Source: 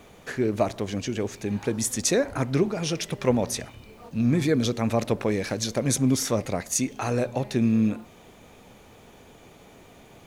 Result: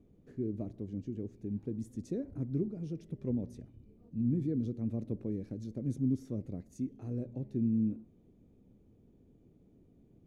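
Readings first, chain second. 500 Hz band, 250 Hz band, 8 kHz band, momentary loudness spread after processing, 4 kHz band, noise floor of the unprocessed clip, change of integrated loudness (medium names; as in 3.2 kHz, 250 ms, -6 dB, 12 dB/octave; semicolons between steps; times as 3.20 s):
-17.0 dB, -8.5 dB, under -35 dB, 10 LU, under -35 dB, -51 dBFS, -11.0 dB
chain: FFT filter 310 Hz 0 dB, 860 Hz -24 dB, 1.5 kHz -27 dB; trim -8.5 dB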